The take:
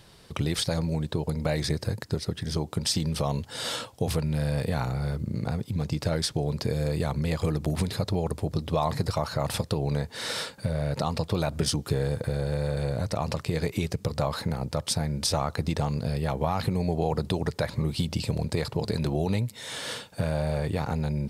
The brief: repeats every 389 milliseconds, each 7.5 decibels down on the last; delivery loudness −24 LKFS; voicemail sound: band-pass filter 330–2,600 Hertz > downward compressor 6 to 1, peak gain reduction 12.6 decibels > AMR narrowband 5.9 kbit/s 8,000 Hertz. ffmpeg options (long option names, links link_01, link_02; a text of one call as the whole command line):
ffmpeg -i in.wav -af "highpass=330,lowpass=2600,aecho=1:1:389|778|1167|1556|1945:0.422|0.177|0.0744|0.0312|0.0131,acompressor=threshold=-35dB:ratio=6,volume=18dB" -ar 8000 -c:a libopencore_amrnb -b:a 5900 out.amr